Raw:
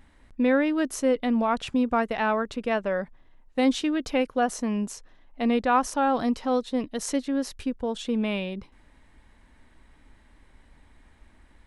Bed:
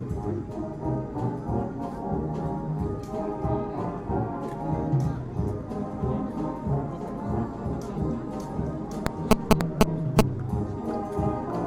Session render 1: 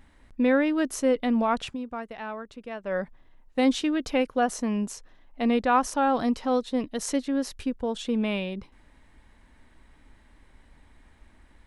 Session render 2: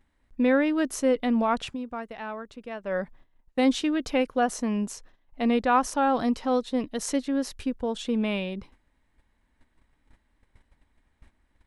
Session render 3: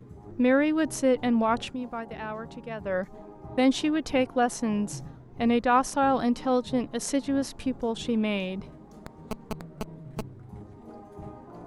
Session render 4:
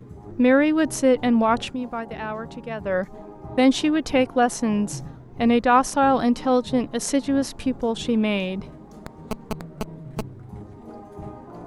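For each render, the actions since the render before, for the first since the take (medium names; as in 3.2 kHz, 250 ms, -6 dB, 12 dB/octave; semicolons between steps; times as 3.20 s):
1.64–2.96 s: dip -11 dB, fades 0.13 s
gate -50 dBFS, range -13 dB
add bed -15.5 dB
trim +5 dB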